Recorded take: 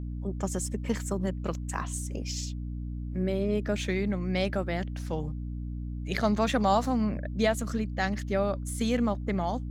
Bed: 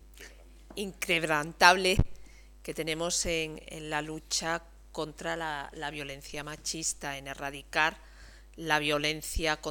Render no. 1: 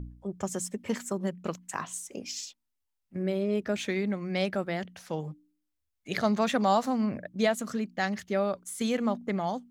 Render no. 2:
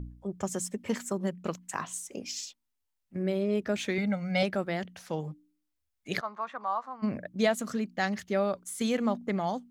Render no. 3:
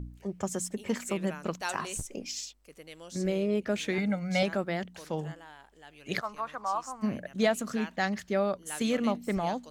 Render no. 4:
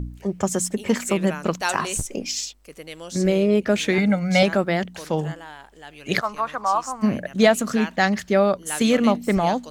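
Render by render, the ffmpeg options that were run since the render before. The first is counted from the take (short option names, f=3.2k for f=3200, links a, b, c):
-af "bandreject=f=60:t=h:w=4,bandreject=f=120:t=h:w=4,bandreject=f=180:t=h:w=4,bandreject=f=240:t=h:w=4,bandreject=f=300:t=h:w=4"
-filter_complex "[0:a]asettb=1/sr,asplit=3[a][b][c];[a]atrim=end=3.984[d];[b]atrim=start=3.98:end=4.43,asetpts=PTS-STARTPTS,afade=t=in:d=0.004:c=qsin,afade=t=out:st=0.446:d=0.004:c=qsin,aecho=1:1:1.4:0.83,atrim=end_sample=19845[e];[c]atrim=start=4.426[f];[d][e]acrossfade=d=0.004:c1=hsin:c2=qsin[g];[g][f]acrossfade=d=0.004:c1=qsin:c2=hsin,asplit=3[h][i][j];[h]afade=t=out:st=6.19:d=0.02[k];[i]bandpass=f=1.1k:t=q:w=3.7,afade=t=in:st=6.19:d=0.02,afade=t=out:st=7.02:d=0.02[l];[j]afade=t=in:st=7.02:d=0.02[m];[k][l][m]amix=inputs=3:normalize=0"
-filter_complex "[1:a]volume=-15.5dB[a];[0:a][a]amix=inputs=2:normalize=0"
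-af "volume=10dB"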